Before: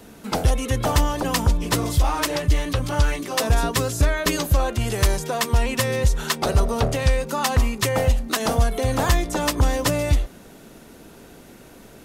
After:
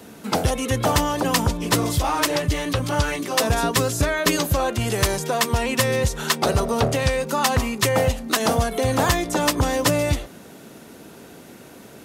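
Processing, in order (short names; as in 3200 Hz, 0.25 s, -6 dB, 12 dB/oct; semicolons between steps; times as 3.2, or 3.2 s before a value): HPF 100 Hz 12 dB/oct; gain +2.5 dB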